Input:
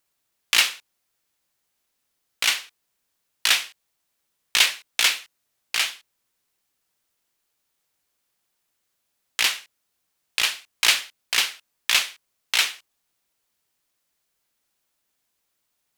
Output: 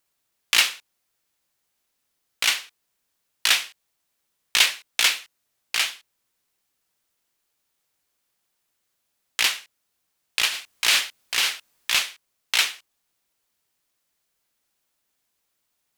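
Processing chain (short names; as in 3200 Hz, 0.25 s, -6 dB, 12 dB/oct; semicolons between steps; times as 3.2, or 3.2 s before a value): 10.48–11.99 transient shaper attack -4 dB, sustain +8 dB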